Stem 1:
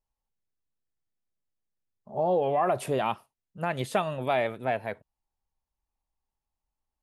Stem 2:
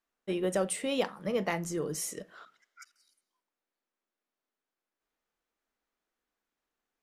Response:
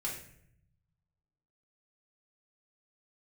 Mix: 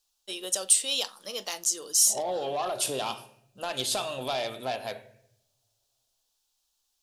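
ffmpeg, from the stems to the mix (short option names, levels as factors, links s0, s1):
-filter_complex "[0:a]highshelf=f=2700:g=-8.5,acompressor=threshold=0.0447:ratio=6,volume=0.562,asplit=2[s0][s1];[s1]volume=0.501[s2];[1:a]lowshelf=f=230:g=-10,volume=0.376[s3];[2:a]atrim=start_sample=2205[s4];[s2][s4]afir=irnorm=-1:irlink=0[s5];[s0][s3][s5]amix=inputs=3:normalize=0,asplit=2[s6][s7];[s7]highpass=f=720:p=1,volume=3.55,asoftclip=type=tanh:threshold=0.0891[s8];[s6][s8]amix=inputs=2:normalize=0,lowpass=f=2500:p=1,volume=0.501,equalizer=f=160:w=7.3:g=-14.5,aexciter=amount=15.1:drive=6.2:freq=3200"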